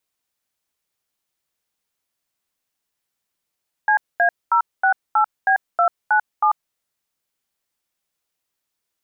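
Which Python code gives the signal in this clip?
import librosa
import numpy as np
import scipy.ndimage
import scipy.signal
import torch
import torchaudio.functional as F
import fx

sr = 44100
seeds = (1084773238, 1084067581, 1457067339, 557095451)

y = fx.dtmf(sr, digits='CA068B297', tone_ms=92, gap_ms=226, level_db=-15.5)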